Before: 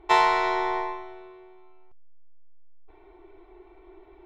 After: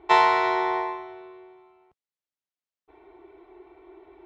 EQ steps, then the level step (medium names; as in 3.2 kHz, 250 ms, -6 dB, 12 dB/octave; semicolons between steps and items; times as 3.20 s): high-pass 88 Hz 12 dB/octave; distance through air 67 m; +2.0 dB